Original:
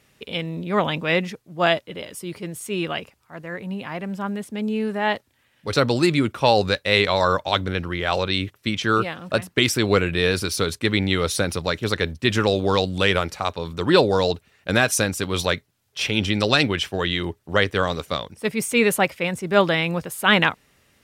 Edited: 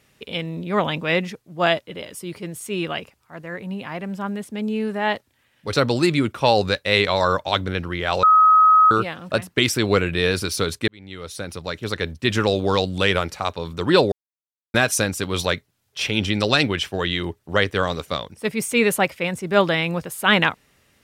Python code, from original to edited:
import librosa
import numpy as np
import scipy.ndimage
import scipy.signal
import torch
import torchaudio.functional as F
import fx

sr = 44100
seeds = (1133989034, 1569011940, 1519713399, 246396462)

y = fx.edit(x, sr, fx.bleep(start_s=8.23, length_s=0.68, hz=1270.0, db=-9.5),
    fx.fade_in_span(start_s=10.88, length_s=1.49),
    fx.silence(start_s=14.12, length_s=0.62), tone=tone)